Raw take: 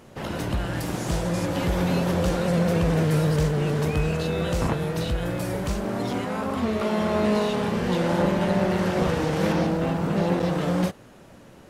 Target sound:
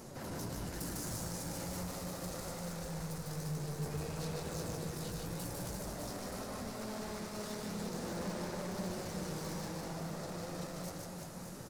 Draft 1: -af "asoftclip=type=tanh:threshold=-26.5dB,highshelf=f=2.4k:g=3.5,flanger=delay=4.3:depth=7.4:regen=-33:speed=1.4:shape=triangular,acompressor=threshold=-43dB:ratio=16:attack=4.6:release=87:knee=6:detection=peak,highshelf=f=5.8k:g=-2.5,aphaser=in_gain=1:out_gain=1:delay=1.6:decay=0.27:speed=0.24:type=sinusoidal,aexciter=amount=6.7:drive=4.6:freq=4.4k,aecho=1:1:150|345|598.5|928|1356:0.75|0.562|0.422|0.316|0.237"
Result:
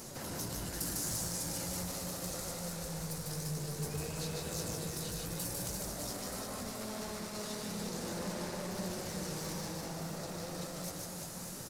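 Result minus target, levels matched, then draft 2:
soft clip: distortion -4 dB; 4000 Hz band +2.5 dB
-af "asoftclip=type=tanh:threshold=-34.5dB,highshelf=f=2.4k:g=-6.5,flanger=delay=4.3:depth=7.4:regen=-33:speed=1.4:shape=triangular,acompressor=threshold=-43dB:ratio=16:attack=4.6:release=87:knee=6:detection=peak,highshelf=f=5.8k:g=-2.5,aphaser=in_gain=1:out_gain=1:delay=1.6:decay=0.27:speed=0.24:type=sinusoidal,aexciter=amount=6.7:drive=4.6:freq=4.4k,aecho=1:1:150|345|598.5|928|1356:0.75|0.562|0.422|0.316|0.237"

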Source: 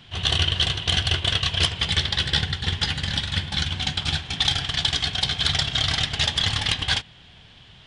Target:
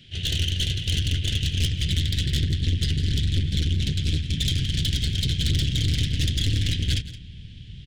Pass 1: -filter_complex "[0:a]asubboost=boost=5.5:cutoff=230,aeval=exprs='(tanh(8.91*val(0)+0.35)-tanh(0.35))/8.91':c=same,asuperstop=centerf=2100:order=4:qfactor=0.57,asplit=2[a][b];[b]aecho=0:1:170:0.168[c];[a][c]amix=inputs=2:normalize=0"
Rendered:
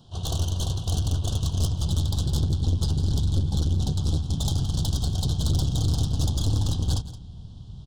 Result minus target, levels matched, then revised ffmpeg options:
1000 Hz band +19.5 dB
-filter_complex "[0:a]asubboost=boost=5.5:cutoff=230,aeval=exprs='(tanh(8.91*val(0)+0.35)-tanh(0.35))/8.91':c=same,asuperstop=centerf=960:order=4:qfactor=0.57,asplit=2[a][b];[b]aecho=0:1:170:0.168[c];[a][c]amix=inputs=2:normalize=0"

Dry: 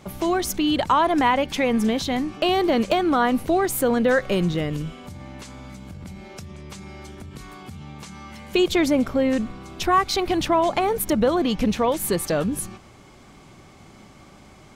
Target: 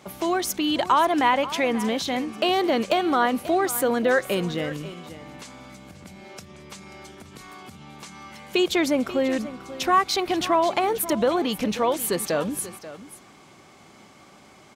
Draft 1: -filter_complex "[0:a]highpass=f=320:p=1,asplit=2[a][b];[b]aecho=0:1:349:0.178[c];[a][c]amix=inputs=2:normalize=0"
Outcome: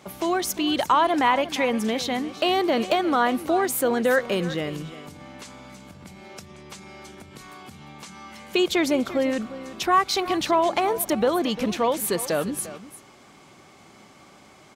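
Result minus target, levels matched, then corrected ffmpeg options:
echo 0.187 s early
-filter_complex "[0:a]highpass=f=320:p=1,asplit=2[a][b];[b]aecho=0:1:536:0.178[c];[a][c]amix=inputs=2:normalize=0"

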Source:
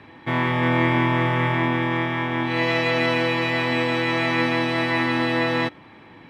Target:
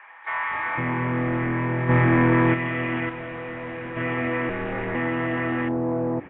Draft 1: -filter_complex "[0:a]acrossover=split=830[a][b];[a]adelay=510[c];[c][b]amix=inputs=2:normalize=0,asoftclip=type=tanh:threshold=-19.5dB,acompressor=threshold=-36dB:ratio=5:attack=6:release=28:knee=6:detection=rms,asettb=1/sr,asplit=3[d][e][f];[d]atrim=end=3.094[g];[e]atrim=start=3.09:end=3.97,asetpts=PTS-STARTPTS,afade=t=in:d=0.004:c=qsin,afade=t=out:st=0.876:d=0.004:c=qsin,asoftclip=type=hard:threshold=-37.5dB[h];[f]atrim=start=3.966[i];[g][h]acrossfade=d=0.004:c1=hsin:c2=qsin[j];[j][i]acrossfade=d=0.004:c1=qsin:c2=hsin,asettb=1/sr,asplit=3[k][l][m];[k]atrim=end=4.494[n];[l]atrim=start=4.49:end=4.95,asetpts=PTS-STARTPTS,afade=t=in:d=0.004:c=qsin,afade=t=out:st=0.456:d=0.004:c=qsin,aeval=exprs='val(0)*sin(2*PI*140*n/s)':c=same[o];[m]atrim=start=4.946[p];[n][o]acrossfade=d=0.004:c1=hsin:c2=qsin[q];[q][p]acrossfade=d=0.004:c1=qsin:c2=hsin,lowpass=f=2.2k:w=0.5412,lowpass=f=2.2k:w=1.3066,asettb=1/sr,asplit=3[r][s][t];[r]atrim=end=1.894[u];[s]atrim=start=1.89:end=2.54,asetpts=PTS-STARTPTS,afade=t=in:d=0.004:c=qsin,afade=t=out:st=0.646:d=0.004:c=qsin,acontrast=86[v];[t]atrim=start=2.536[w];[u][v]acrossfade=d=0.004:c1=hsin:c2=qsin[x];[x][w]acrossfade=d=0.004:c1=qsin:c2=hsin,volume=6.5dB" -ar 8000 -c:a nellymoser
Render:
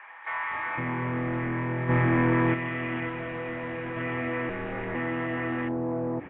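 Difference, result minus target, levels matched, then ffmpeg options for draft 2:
compressor: peak gain reduction +5 dB
-filter_complex "[0:a]acrossover=split=830[a][b];[a]adelay=510[c];[c][b]amix=inputs=2:normalize=0,asoftclip=type=tanh:threshold=-19.5dB,acompressor=threshold=-30dB:ratio=5:attack=6:release=28:knee=6:detection=rms,asettb=1/sr,asplit=3[d][e][f];[d]atrim=end=3.094[g];[e]atrim=start=3.09:end=3.97,asetpts=PTS-STARTPTS,afade=t=in:d=0.004:c=qsin,afade=t=out:st=0.876:d=0.004:c=qsin,asoftclip=type=hard:threshold=-37.5dB[h];[f]atrim=start=3.966[i];[g][h]acrossfade=d=0.004:c1=hsin:c2=qsin[j];[j][i]acrossfade=d=0.004:c1=qsin:c2=hsin,asettb=1/sr,asplit=3[k][l][m];[k]atrim=end=4.494[n];[l]atrim=start=4.49:end=4.95,asetpts=PTS-STARTPTS,afade=t=in:d=0.004:c=qsin,afade=t=out:st=0.456:d=0.004:c=qsin,aeval=exprs='val(0)*sin(2*PI*140*n/s)':c=same[o];[m]atrim=start=4.946[p];[n][o]acrossfade=d=0.004:c1=hsin:c2=qsin[q];[q][p]acrossfade=d=0.004:c1=qsin:c2=hsin,lowpass=f=2.2k:w=0.5412,lowpass=f=2.2k:w=1.3066,asettb=1/sr,asplit=3[r][s][t];[r]atrim=end=1.894[u];[s]atrim=start=1.89:end=2.54,asetpts=PTS-STARTPTS,afade=t=in:d=0.004:c=qsin,afade=t=out:st=0.646:d=0.004:c=qsin,acontrast=86[v];[t]atrim=start=2.536[w];[u][v]acrossfade=d=0.004:c1=hsin:c2=qsin[x];[x][w]acrossfade=d=0.004:c1=qsin:c2=hsin,volume=6.5dB" -ar 8000 -c:a nellymoser

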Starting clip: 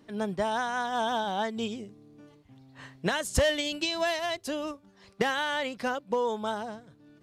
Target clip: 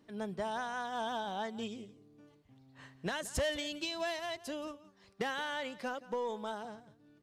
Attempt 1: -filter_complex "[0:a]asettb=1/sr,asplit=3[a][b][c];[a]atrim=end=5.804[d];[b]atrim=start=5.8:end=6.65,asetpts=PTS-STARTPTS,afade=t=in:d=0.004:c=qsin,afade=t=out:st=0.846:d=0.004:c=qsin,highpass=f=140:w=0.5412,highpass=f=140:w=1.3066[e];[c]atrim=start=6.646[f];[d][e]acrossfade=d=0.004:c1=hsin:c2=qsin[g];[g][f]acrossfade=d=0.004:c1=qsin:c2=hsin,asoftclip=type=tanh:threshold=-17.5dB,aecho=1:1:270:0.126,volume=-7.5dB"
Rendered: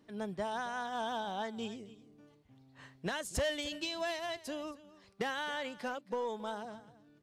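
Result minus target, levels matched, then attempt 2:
echo 96 ms late
-filter_complex "[0:a]asettb=1/sr,asplit=3[a][b][c];[a]atrim=end=5.804[d];[b]atrim=start=5.8:end=6.65,asetpts=PTS-STARTPTS,afade=t=in:d=0.004:c=qsin,afade=t=out:st=0.846:d=0.004:c=qsin,highpass=f=140:w=0.5412,highpass=f=140:w=1.3066[e];[c]atrim=start=6.646[f];[d][e]acrossfade=d=0.004:c1=hsin:c2=qsin[g];[g][f]acrossfade=d=0.004:c1=qsin:c2=hsin,asoftclip=type=tanh:threshold=-17.5dB,aecho=1:1:174:0.126,volume=-7.5dB"

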